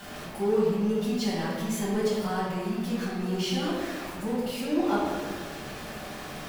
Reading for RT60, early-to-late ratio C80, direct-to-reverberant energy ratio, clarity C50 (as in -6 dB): 1.7 s, 1.5 dB, -10.5 dB, -0.5 dB